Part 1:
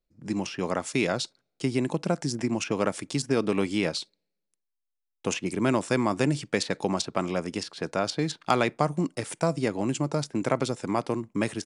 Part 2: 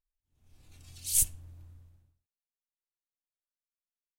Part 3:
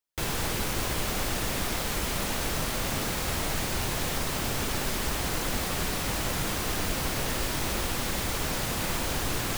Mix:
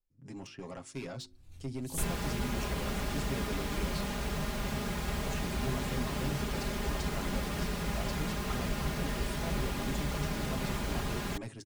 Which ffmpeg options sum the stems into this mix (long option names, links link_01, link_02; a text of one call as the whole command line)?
ffmpeg -i stem1.wav -i stem2.wav -i stem3.wav -filter_complex "[0:a]bandreject=frequency=52.09:width_type=h:width=4,bandreject=frequency=104.18:width_type=h:width=4,bandreject=frequency=156.27:width_type=h:width=4,bandreject=frequency=208.36:width_type=h:width=4,bandreject=frequency=260.45:width_type=h:width=4,bandreject=frequency=312.54:width_type=h:width=4,bandreject=frequency=364.63:width_type=h:width=4,asoftclip=type=tanh:threshold=-24dB,aecho=1:1:7.4:0.59,volume=-14.5dB,asplit=2[link_01][link_02];[1:a]adelay=800,volume=-3dB[link_03];[2:a]highpass=50,highshelf=frequency=4900:gain=-8.5,aecho=1:1:4.9:0.71,adelay=1800,volume=-7.5dB[link_04];[link_02]apad=whole_len=219982[link_05];[link_03][link_05]sidechaincompress=threshold=-50dB:ratio=8:attack=5.4:release=473[link_06];[link_01][link_06][link_04]amix=inputs=3:normalize=0,lowshelf=frequency=150:gain=11" out.wav